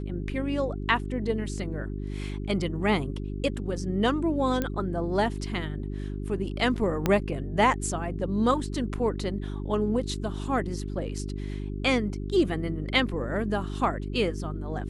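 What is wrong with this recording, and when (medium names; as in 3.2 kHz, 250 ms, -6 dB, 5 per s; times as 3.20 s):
hum 50 Hz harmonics 8 -33 dBFS
4.62 s: pop -14 dBFS
7.06 s: pop -10 dBFS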